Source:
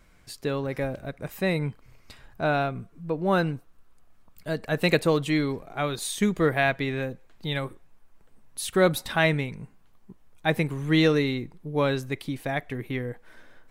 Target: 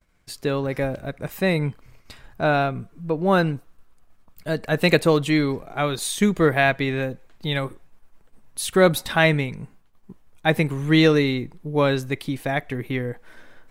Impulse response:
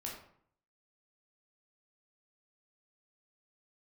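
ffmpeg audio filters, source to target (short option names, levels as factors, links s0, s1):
-af "agate=range=0.0224:threshold=0.00398:ratio=3:detection=peak,volume=1.68"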